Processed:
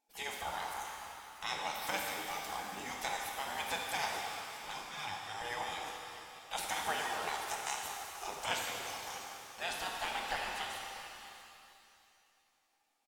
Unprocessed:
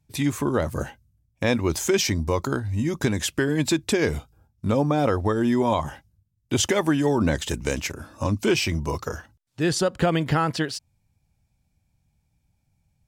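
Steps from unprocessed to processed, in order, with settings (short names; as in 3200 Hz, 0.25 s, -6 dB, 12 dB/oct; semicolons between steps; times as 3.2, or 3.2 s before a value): 4.69–5.42 weighting filter A; spectral gate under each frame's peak -20 dB weak; bell 810 Hz +13 dB 0.34 oct; echo 0.645 s -17 dB; shimmer reverb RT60 2.6 s, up +7 st, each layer -8 dB, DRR 0 dB; gain -5.5 dB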